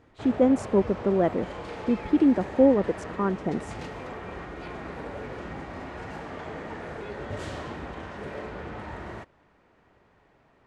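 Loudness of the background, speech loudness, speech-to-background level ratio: −38.0 LKFS, −24.5 LKFS, 13.5 dB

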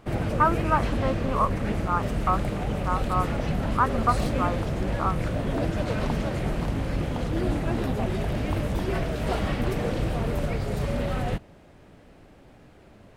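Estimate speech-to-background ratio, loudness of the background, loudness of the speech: 0.5 dB, −28.5 LKFS, −28.0 LKFS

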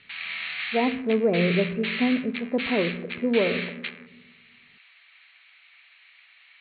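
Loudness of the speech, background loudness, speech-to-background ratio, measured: −26.0 LKFS, −31.0 LKFS, 5.0 dB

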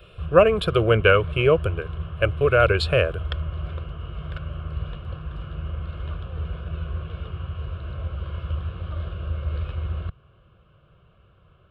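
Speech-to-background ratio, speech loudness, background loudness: 12.5 dB, −20.0 LKFS, −32.5 LKFS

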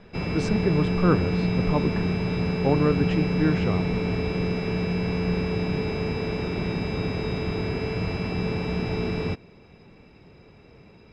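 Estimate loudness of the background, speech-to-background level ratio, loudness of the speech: −26.5 LKFS, −0.5 dB, −27.0 LKFS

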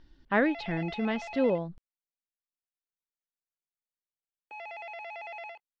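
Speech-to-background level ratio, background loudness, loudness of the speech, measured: 12.5 dB, −42.0 LKFS, −29.5 LKFS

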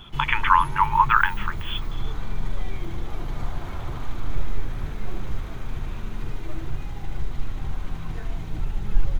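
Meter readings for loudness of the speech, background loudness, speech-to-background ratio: −20.5 LKFS, −34.5 LKFS, 14.0 dB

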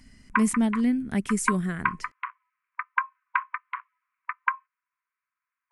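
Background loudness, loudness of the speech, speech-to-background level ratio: −32.0 LKFS, −26.5 LKFS, 5.5 dB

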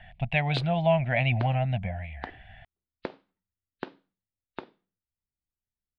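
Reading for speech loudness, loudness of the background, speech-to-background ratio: −26.5 LKFS, −44.0 LKFS, 17.5 dB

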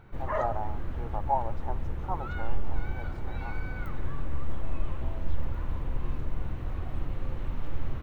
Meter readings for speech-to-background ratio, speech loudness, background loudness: 0.0 dB, −37.0 LKFS, −37.0 LKFS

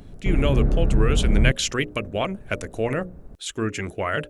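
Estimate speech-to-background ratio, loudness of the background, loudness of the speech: −3.0 dB, −23.5 LKFS, −26.5 LKFS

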